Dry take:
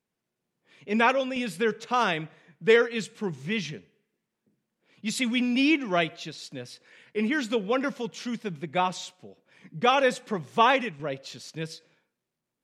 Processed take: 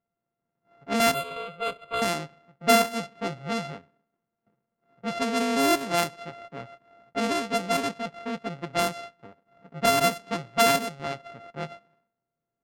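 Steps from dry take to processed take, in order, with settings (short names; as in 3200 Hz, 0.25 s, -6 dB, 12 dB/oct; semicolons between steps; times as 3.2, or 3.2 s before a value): sample sorter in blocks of 64 samples; 1.14–2.02 fixed phaser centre 1200 Hz, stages 8; low-pass opened by the level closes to 1600 Hz, open at -19.5 dBFS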